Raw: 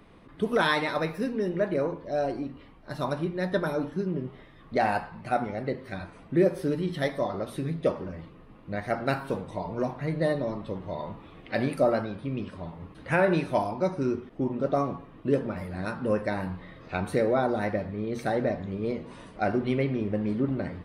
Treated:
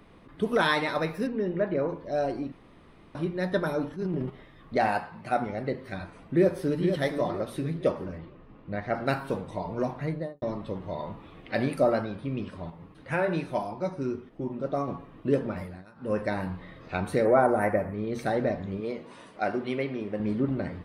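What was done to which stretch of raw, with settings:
0:01.27–0:01.89: high-frequency loss of the air 200 metres
0:02.52–0:03.15: fill with room tone
0:03.89–0:04.30: transient designer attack −9 dB, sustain +8 dB
0:04.88–0:05.37: high-pass filter 130 Hz 6 dB per octave
0:05.96–0:06.83: delay throw 470 ms, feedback 35%, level −7 dB
0:08.18–0:08.95: high-frequency loss of the air 150 metres
0:10.01–0:10.42: fade out and dull
0:12.70–0:14.88: flanger 1.1 Hz, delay 5 ms, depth 3.1 ms, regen −61%
0:15.60–0:16.19: duck −20.5 dB, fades 0.24 s
0:17.25–0:17.94: drawn EQ curve 230 Hz 0 dB, 650 Hz +5 dB, 1,300 Hz +5 dB, 2,300 Hz +2 dB, 3,800 Hz −19 dB, 10,000 Hz +12 dB
0:18.80–0:20.20: high-pass filter 360 Hz 6 dB per octave

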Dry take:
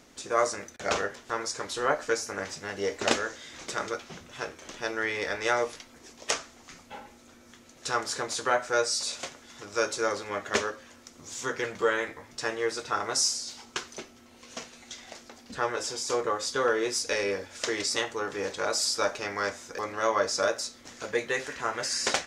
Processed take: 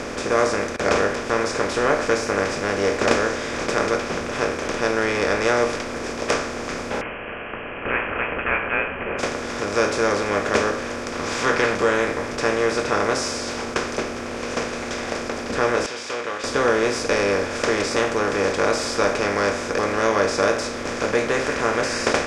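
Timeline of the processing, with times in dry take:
0:07.01–0:09.19: voice inversion scrambler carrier 3,000 Hz
0:11.12–0:11.75: flat-topped bell 2,000 Hz +9.5 dB 2.9 octaves
0:15.86–0:16.44: resonant band-pass 3,000 Hz, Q 2.6
whole clip: compressor on every frequency bin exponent 0.4; spectral tilt −2.5 dB per octave

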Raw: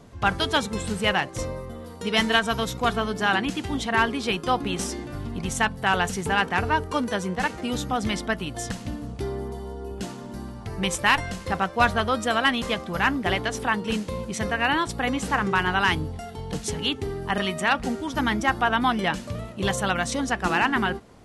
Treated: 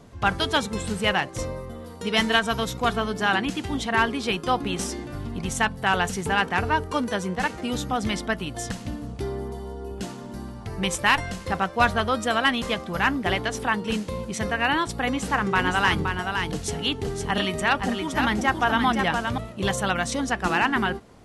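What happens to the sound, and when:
0:15.04–0:19.38: single-tap delay 519 ms −5.5 dB

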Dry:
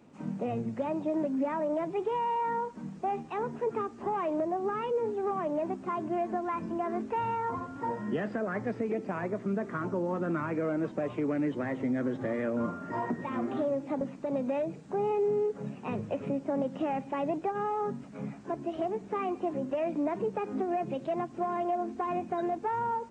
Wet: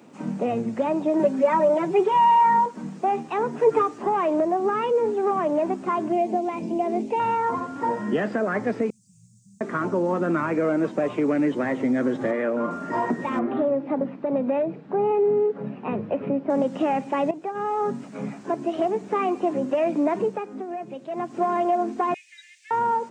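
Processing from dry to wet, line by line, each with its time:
0:01.19–0:02.66: comb filter 5.3 ms, depth 91%
0:03.57–0:03.98: comb filter 6.6 ms, depth 86%
0:06.12–0:07.20: flat-topped bell 1,400 Hz −15 dB 1 octave
0:08.90–0:09.61: inverse Chebyshev band-stop filter 360–1,900 Hz, stop band 70 dB
0:12.31–0:12.71: bass and treble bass −8 dB, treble −11 dB
0:13.39–0:16.50: high-frequency loss of the air 380 metres
0:17.31–0:17.93: fade in, from −13 dB
0:20.21–0:21.36: duck −10 dB, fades 0.27 s
0:22.14–0:22.71: Butterworth high-pass 1,900 Hz 72 dB per octave
whole clip: high-pass filter 180 Hz 12 dB per octave; high-shelf EQ 6,000 Hz +4.5 dB; level +8.5 dB

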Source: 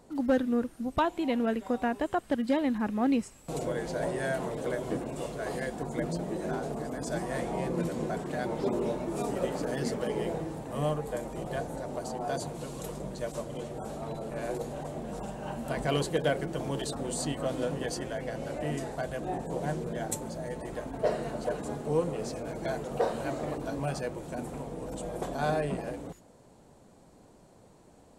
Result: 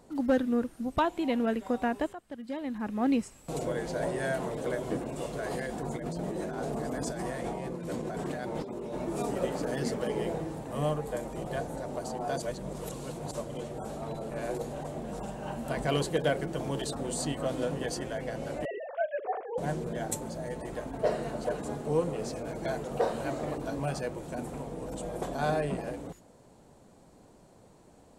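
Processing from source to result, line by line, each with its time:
0:02.13–0:03.09: fade in quadratic, from −14.5 dB
0:05.33–0:08.96: compressor whose output falls as the input rises −35 dBFS
0:12.42–0:13.31: reverse
0:18.65–0:19.58: three sine waves on the formant tracks

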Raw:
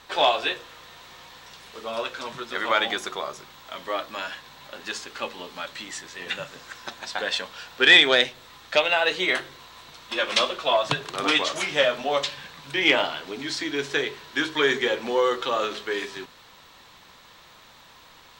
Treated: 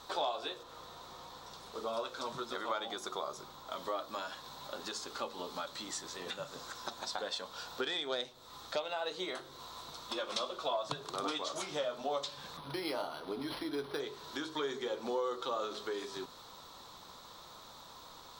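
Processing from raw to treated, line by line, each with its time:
0:00.63–0:03.72: one half of a high-frequency compander decoder only
0:12.57–0:14.00: linearly interpolated sample-rate reduction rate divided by 6×
whole clip: bass and treble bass −3 dB, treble −1 dB; downward compressor 3 to 1, threshold −36 dBFS; flat-topped bell 2,200 Hz −11 dB 1.1 octaves

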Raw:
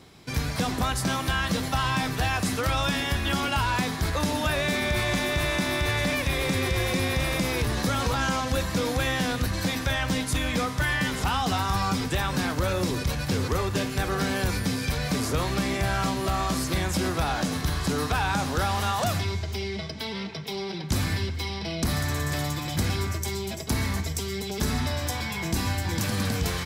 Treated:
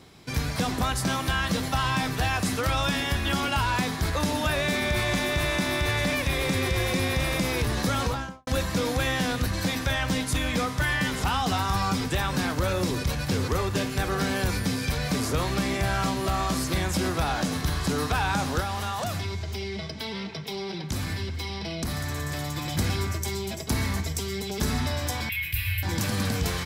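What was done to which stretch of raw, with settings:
0:07.99–0:08.47: fade out and dull
0:18.60–0:22.56: downward compressor 2 to 1, threshold −29 dBFS
0:25.29–0:25.83: drawn EQ curve 110 Hz 0 dB, 180 Hz −26 dB, 700 Hz −29 dB, 1,000 Hz −23 dB, 1,700 Hz −3 dB, 2,500 Hz +10 dB, 6,600 Hz −20 dB, 13,000 Hz +10 dB

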